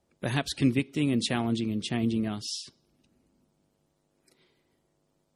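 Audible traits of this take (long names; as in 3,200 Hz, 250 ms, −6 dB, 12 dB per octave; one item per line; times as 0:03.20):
background noise floor −74 dBFS
spectral slope −5.0 dB per octave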